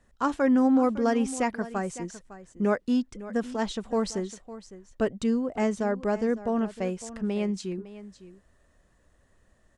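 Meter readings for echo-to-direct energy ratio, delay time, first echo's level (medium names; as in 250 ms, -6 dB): -15.5 dB, 556 ms, -15.5 dB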